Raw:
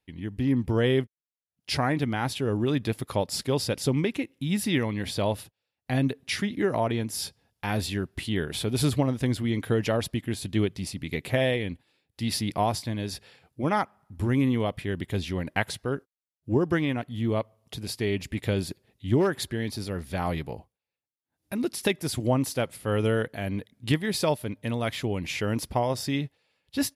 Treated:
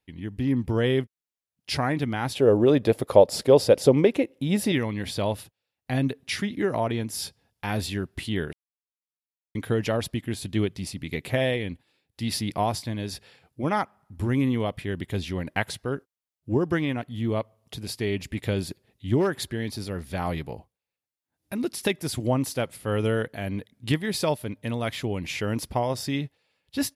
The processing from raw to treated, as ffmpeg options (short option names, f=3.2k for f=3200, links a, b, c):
-filter_complex "[0:a]asettb=1/sr,asplit=3[a][b][c];[a]atrim=end=2.354[d];[b]atrim=start=2.35:end=4.72,asetpts=PTS-STARTPTS,afade=t=in:d=0.004:c=qsin,afade=t=out:st=2.366:d=0.004:c=qsin,equalizer=f=540:t=o:w=1.3:g=14.5[e];[c]atrim=start=4.716[f];[d][e]acrossfade=d=0.004:c1=hsin:c2=qsin[g];[g][f]acrossfade=d=0.004:c1=qsin:c2=hsin,asplit=3[h][i][j];[h]atrim=end=8.53,asetpts=PTS-STARTPTS,afade=t=out:st=8.526:d=0.004:c=hsin[k];[i]atrim=start=8.53:end=9.55,asetpts=PTS-STARTPTS,volume=0[l];[j]atrim=start=9.55,asetpts=PTS-STARTPTS,afade=t=in:d=0.004:c=hsin[m];[k][l][m]concat=n=3:v=0:a=1"